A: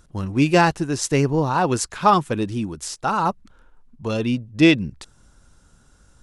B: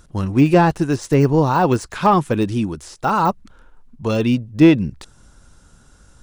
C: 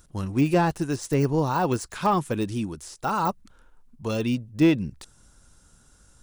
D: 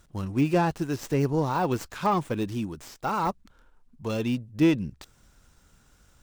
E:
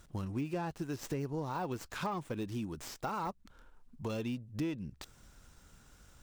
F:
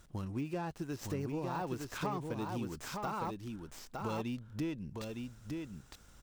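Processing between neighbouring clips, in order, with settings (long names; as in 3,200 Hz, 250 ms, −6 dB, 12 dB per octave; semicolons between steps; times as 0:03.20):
de-essing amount 95%; level +5 dB
high-shelf EQ 6,500 Hz +10.5 dB; level −8 dB
windowed peak hold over 3 samples; level −2 dB
downward compressor 4 to 1, threshold −36 dBFS, peak gain reduction 16.5 dB
single-tap delay 910 ms −4 dB; level −1.5 dB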